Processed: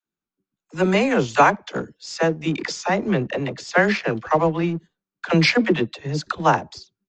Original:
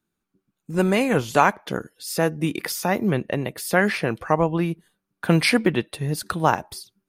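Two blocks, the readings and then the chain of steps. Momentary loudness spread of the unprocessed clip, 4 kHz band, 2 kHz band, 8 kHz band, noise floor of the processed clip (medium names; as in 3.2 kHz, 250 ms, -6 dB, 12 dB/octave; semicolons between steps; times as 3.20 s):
10 LU, +2.0 dB, +2.5 dB, -3.5 dB, under -85 dBFS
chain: gate -42 dBFS, range -8 dB; bass shelf 140 Hz -5 dB; phase dispersion lows, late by 59 ms, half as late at 430 Hz; in parallel at -5 dB: crossover distortion -33 dBFS; on the sum: resampled via 16 kHz; trim -1 dB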